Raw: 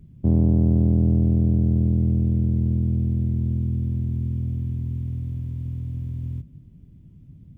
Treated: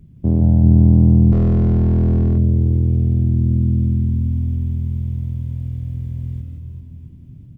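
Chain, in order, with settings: reverse bouncing-ball echo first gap 170 ms, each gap 1.3×, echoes 5; 1.32–2.38 s: hard clipper -14.5 dBFS, distortion -14 dB; trim +2.5 dB

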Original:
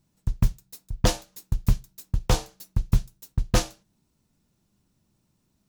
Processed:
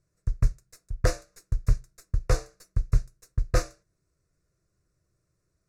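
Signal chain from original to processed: tracing distortion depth 0.075 ms; low-pass 7.7 kHz 12 dB/octave; static phaser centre 860 Hz, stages 6

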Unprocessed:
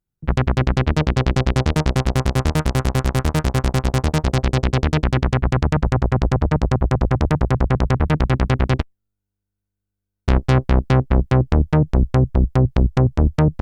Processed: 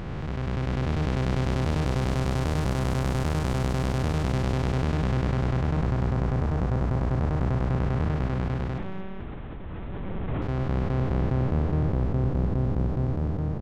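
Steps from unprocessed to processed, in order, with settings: spectral blur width 1320 ms; 8.78–10.42 s: monotone LPC vocoder at 8 kHz 190 Hz; frequency-shifting echo 225 ms, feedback 32%, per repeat +38 Hz, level -11 dB; trim -4 dB

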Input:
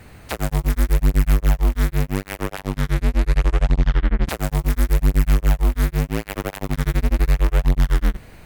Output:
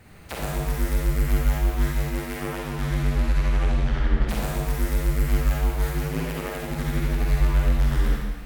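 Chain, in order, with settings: Schroeder reverb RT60 1.3 s, DRR -4 dB; trim -8 dB

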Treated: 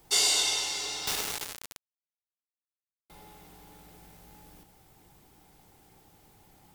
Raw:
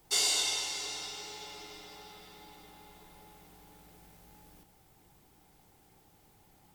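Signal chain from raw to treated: 1.07–3.10 s: companded quantiser 2-bit; trim +4 dB

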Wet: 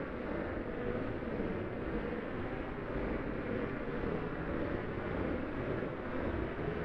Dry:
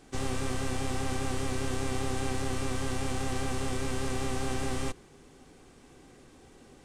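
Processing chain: steep low-pass 600 Hz; noise-vocoded speech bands 3; Paulstretch 5.3×, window 0.10 s, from 0.67 s; ring modulator 130 Hz; reverberation, pre-delay 3 ms, DRR 8 dB

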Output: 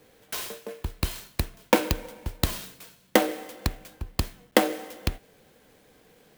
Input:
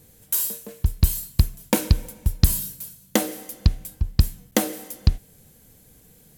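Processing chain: three-band isolator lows -17 dB, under 300 Hz, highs -16 dB, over 4.3 kHz; sampling jitter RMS 0.034 ms; trim +5 dB

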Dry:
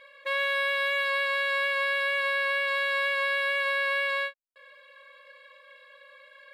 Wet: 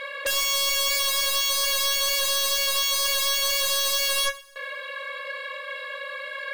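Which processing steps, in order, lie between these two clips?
sine folder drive 17 dB, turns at -18 dBFS; two-slope reverb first 0.61 s, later 2.1 s, from -18 dB, DRR 12.5 dB; trim -3 dB

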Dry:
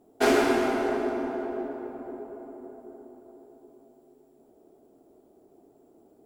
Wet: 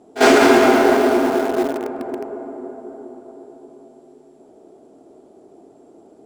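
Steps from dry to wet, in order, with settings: low-pass 9.3 kHz 24 dB/octave; de-hum 59.75 Hz, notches 7; in parallel at -12 dB: bit crusher 5-bit; on the sum: bass shelf 75 Hz -12 dB; on a send: reverse echo 47 ms -19.5 dB; on the sum: loudness maximiser +13 dB; trim -1 dB

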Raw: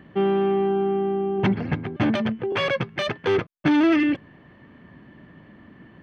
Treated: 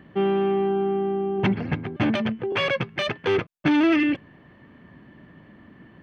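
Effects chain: dynamic bell 2.6 kHz, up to +4 dB, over -41 dBFS, Q 2.4; trim -1 dB

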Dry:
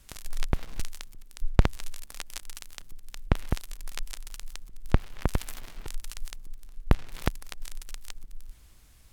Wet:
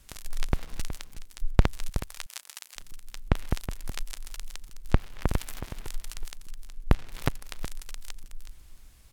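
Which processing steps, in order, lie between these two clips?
1.89–2.76 s: high-pass 640 Hz 12 dB/octave; delay 370 ms -11 dB

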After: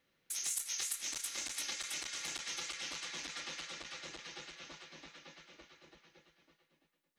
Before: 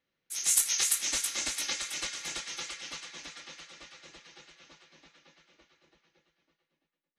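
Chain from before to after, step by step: compression 4:1, threshold -44 dBFS, peak gain reduction 19 dB; transformer saturation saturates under 3.4 kHz; trim +6 dB

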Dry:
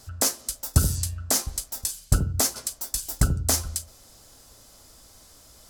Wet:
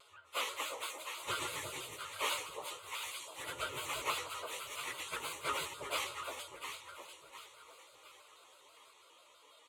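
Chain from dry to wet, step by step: self-modulated delay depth 0.13 ms; harmony voices -7 st -14 dB, +4 st -14 dB; band-pass 700–4500 Hz; ever faster or slower copies 158 ms, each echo +2 st, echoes 2; static phaser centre 1.1 kHz, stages 8; echo whose repeats swap between lows and highs 208 ms, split 900 Hz, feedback 61%, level -3 dB; plain phase-vocoder stretch 1.7×; vibrato with a chosen wave square 6.1 Hz, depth 100 cents; trim +2.5 dB

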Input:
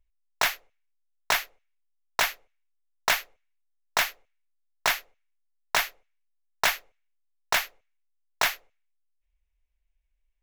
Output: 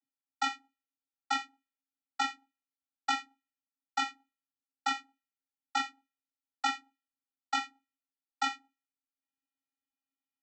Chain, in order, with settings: vocoder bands 32, square 271 Hz; trim -5.5 dB

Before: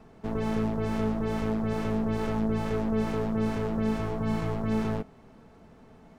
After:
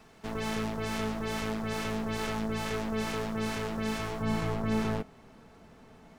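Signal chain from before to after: tilt shelf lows -8 dB, about 1.3 kHz, from 4.21 s lows -3.5 dB; trim +1.5 dB

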